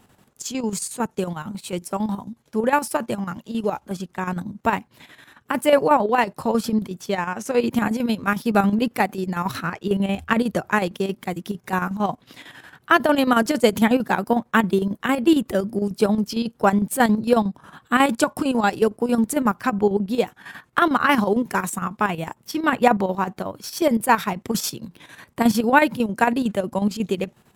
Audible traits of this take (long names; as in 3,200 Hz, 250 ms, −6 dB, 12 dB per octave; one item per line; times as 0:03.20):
chopped level 11 Hz, depth 60%, duty 65%